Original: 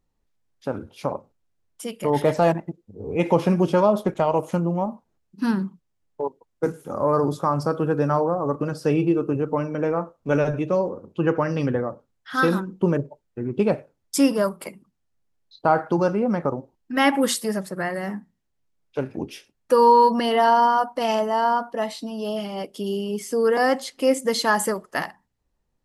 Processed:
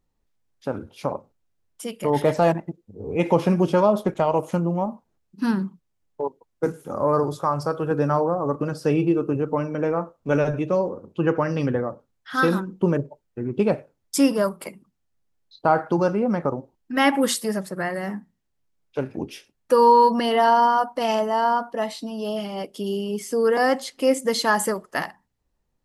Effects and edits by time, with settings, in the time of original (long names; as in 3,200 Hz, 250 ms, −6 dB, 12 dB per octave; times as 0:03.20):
0:07.23–0:07.91: parametric band 230 Hz −10.5 dB